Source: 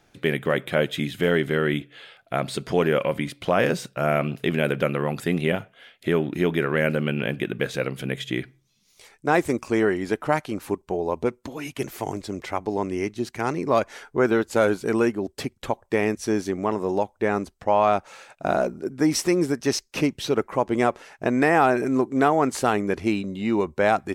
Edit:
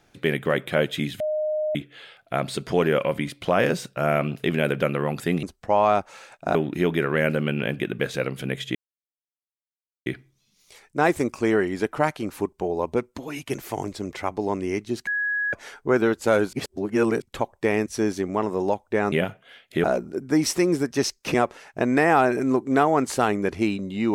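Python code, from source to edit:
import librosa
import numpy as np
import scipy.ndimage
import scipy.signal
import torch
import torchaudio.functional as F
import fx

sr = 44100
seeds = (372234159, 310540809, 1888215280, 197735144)

y = fx.edit(x, sr, fx.bleep(start_s=1.2, length_s=0.55, hz=614.0, db=-22.0),
    fx.swap(start_s=5.43, length_s=0.72, other_s=17.41, other_length_s=1.12),
    fx.insert_silence(at_s=8.35, length_s=1.31),
    fx.bleep(start_s=13.36, length_s=0.46, hz=1670.0, db=-22.0),
    fx.reverse_span(start_s=14.82, length_s=0.69),
    fx.cut(start_s=20.03, length_s=0.76), tone=tone)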